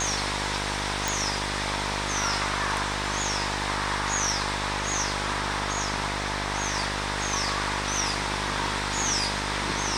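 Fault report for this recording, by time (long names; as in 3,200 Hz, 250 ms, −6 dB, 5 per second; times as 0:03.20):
mains buzz 50 Hz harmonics 33 −33 dBFS
0:01.08: click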